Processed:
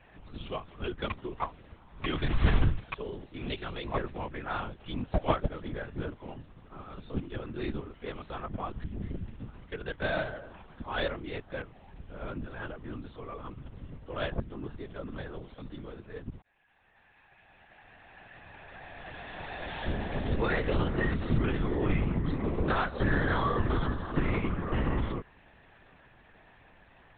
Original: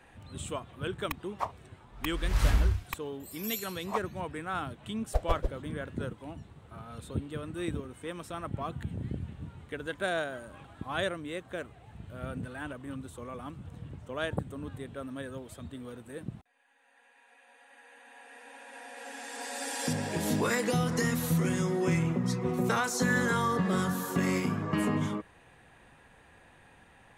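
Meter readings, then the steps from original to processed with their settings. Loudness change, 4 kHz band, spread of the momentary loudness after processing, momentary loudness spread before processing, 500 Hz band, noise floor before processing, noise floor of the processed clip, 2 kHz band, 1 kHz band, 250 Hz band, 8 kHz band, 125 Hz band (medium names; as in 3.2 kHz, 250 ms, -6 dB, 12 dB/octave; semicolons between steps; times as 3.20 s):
-1.0 dB, -2.0 dB, 18 LU, 17 LU, -0.5 dB, -59 dBFS, -59 dBFS, -1.0 dB, -0.5 dB, -2.0 dB, under -40 dB, 0.0 dB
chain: in parallel at -10 dB: Schmitt trigger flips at -23 dBFS; on the sum: LPC vocoder at 8 kHz whisper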